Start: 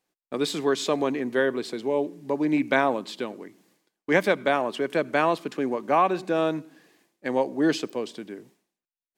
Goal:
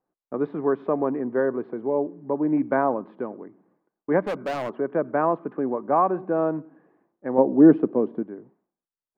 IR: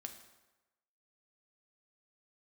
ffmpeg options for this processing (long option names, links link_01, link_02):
-filter_complex "[0:a]lowpass=frequency=1300:width=0.5412,lowpass=frequency=1300:width=1.3066,asettb=1/sr,asplit=3[link_01][link_02][link_03];[link_01]atrim=end=4.244[link_04];[link_02]atrim=start=4.24:end=4.74,asetpts=PTS-STARTPTS,afade=type=in:duration=0.004:curve=qsin,afade=type=out:start_time=0.496:duration=0.004:curve=qsin,asoftclip=type=hard:threshold=-25dB[link_05];[link_03]atrim=start=4.736[link_06];[link_04][link_05]acrossfade=duration=0.004:curve1=hsin:curve2=qsin[link_07];[link_07][link_06]acrossfade=duration=0.004:curve1=qsin:curve2=hsin,asettb=1/sr,asplit=3[link_08][link_09][link_10];[link_08]atrim=end=7.384[link_11];[link_09]atrim=start=7.38:end=8.23,asetpts=PTS-STARTPTS,afade=type=in:duration=0.004:curve=qsin,afade=type=out:start_time=0.846:duration=0.004:curve=qsin,equalizer=frequency=240:width_type=o:width=2.3:gain=10[link_12];[link_10]atrim=start=8.226[link_13];[link_11][link_12]acrossfade=duration=0.004:curve1=hsin:curve2=qsin[link_14];[link_14][link_13]acrossfade=duration=0.004:curve1=qsin:curve2=hsin,volume=1dB"